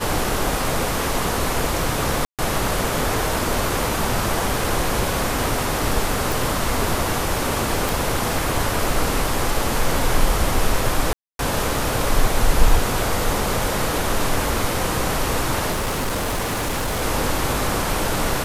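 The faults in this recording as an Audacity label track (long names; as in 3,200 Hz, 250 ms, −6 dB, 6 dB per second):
2.250000	2.390000	drop-out 137 ms
6.320000	6.320000	click
7.890000	7.890000	click
11.130000	11.390000	drop-out 262 ms
15.710000	17.030000	clipping −19.5 dBFS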